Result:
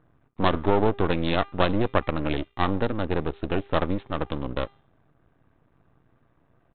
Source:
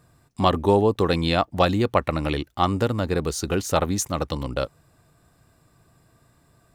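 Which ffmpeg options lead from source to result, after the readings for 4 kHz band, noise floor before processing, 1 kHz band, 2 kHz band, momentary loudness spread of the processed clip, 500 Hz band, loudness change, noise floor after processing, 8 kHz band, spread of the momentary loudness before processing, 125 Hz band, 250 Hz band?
−4.5 dB, −61 dBFS, −3.5 dB, −0.5 dB, 8 LU, −3.5 dB, −3.0 dB, −66 dBFS, below −40 dB, 8 LU, −4.0 dB, −2.0 dB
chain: -af "adynamicsmooth=sensitivity=2.5:basefreq=2200,equalizer=frequency=300:width_type=o:width=0.39:gain=4,bandreject=frequency=400.1:width_type=h:width=4,bandreject=frequency=800.2:width_type=h:width=4,bandreject=frequency=1200.3:width_type=h:width=4,bandreject=frequency=1600.4:width_type=h:width=4,bandreject=frequency=2000.5:width_type=h:width=4,bandreject=frequency=2400.6:width_type=h:width=4,bandreject=frequency=2800.7:width_type=h:width=4,bandreject=frequency=3200.8:width_type=h:width=4,bandreject=frequency=3600.9:width_type=h:width=4,bandreject=frequency=4001:width_type=h:width=4,bandreject=frequency=4401.1:width_type=h:width=4,bandreject=frequency=4801.2:width_type=h:width=4,bandreject=frequency=5201.3:width_type=h:width=4,bandreject=frequency=5601.4:width_type=h:width=4,bandreject=frequency=6001.5:width_type=h:width=4,bandreject=frequency=6401.6:width_type=h:width=4,bandreject=frequency=6801.7:width_type=h:width=4,bandreject=frequency=7201.8:width_type=h:width=4,bandreject=frequency=7601.9:width_type=h:width=4,bandreject=frequency=8002:width_type=h:width=4,bandreject=frequency=8402.1:width_type=h:width=4,bandreject=frequency=8802.2:width_type=h:width=4,bandreject=frequency=9202.3:width_type=h:width=4,bandreject=frequency=9602.4:width_type=h:width=4,bandreject=frequency=10002.5:width_type=h:width=4,bandreject=frequency=10402.6:width_type=h:width=4,bandreject=frequency=10802.7:width_type=h:width=4,bandreject=frequency=11202.8:width_type=h:width=4,bandreject=frequency=11602.9:width_type=h:width=4,bandreject=frequency=12003:width_type=h:width=4,bandreject=frequency=12403.1:width_type=h:width=4,bandreject=frequency=12803.2:width_type=h:width=4,bandreject=frequency=13203.3:width_type=h:width=4,bandreject=frequency=13603.4:width_type=h:width=4,aresample=8000,aeval=exprs='max(val(0),0)':channel_layout=same,aresample=44100"

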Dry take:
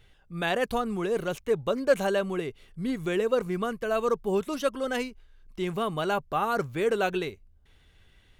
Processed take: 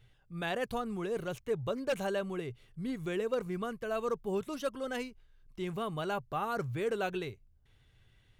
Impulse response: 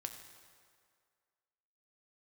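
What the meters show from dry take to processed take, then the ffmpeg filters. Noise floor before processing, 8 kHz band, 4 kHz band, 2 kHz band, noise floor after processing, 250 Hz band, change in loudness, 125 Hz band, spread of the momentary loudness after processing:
−60 dBFS, −7.5 dB, −7.5 dB, −7.5 dB, −66 dBFS, −6.5 dB, −7.5 dB, −3.5 dB, 7 LU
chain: -af "aeval=exprs='0.335*(cos(1*acos(clip(val(0)/0.335,-1,1)))-cos(1*PI/2))+0.0211*(cos(3*acos(clip(val(0)/0.335,-1,1)))-cos(3*PI/2))+0.0106*(cos(5*acos(clip(val(0)/0.335,-1,1)))-cos(5*PI/2))':channel_layout=same,aeval=exprs='0.15*(abs(mod(val(0)/0.15+3,4)-2)-1)':channel_layout=same,equalizer=frequency=120:width_type=o:width=0.41:gain=13,volume=-7dB"

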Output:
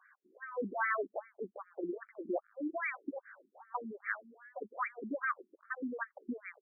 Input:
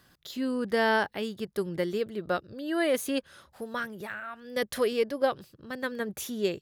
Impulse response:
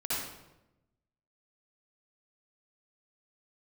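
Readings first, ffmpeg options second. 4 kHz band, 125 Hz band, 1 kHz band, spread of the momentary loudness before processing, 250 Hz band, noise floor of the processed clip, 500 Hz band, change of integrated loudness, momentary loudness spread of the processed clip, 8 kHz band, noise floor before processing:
below −40 dB, below −15 dB, −6.0 dB, 11 LU, −10.0 dB, −80 dBFS, −12.5 dB, −9.0 dB, 12 LU, below −35 dB, −66 dBFS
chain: -af "lowpass=frequency=3000:width_type=q:width=1.8,afftfilt=real='re*lt(hypot(re,im),0.316)':imag='im*lt(hypot(re,im),0.316)':win_size=1024:overlap=0.75,afftfilt=real='re*between(b*sr/1024,270*pow(1700/270,0.5+0.5*sin(2*PI*2.5*pts/sr))/1.41,270*pow(1700/270,0.5+0.5*sin(2*PI*2.5*pts/sr))*1.41)':imag='im*between(b*sr/1024,270*pow(1700/270,0.5+0.5*sin(2*PI*2.5*pts/sr))/1.41,270*pow(1700/270,0.5+0.5*sin(2*PI*2.5*pts/sr))*1.41)':win_size=1024:overlap=0.75,volume=1.5dB"

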